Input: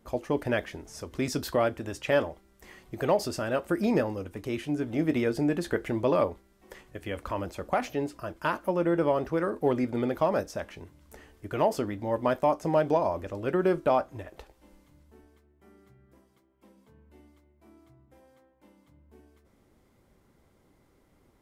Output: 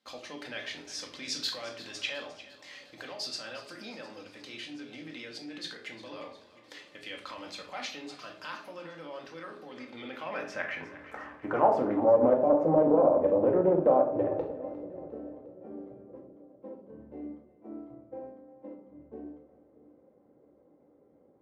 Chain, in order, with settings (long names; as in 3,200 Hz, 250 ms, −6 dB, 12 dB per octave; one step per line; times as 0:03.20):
noise gate −58 dBFS, range −12 dB
high-pass filter 95 Hz 12 dB per octave
spectral tilt −2 dB per octave
in parallel at −2 dB: downward compressor, threshold −33 dBFS, peak gain reduction 15 dB
on the sum: brickwall limiter −20.5 dBFS, peak gain reduction 11 dB
speech leveller 2 s
band-pass filter sweep 4,100 Hz → 510 Hz, 0:09.74–0:12.23
echo with a time of its own for lows and highs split 510 Hz, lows 634 ms, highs 354 ms, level −16 dB
convolution reverb RT60 0.55 s, pre-delay 4 ms, DRR 1.5 dB
highs frequency-modulated by the lows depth 0.2 ms
level +9 dB